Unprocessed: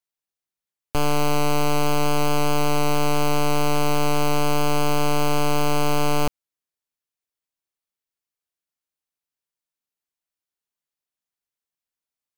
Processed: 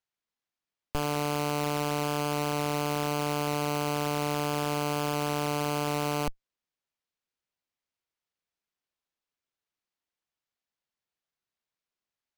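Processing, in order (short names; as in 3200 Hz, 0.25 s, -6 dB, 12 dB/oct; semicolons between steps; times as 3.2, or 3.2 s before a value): one diode to ground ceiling -22.5 dBFS; sample-rate reducer 11000 Hz, jitter 20%; gain -4 dB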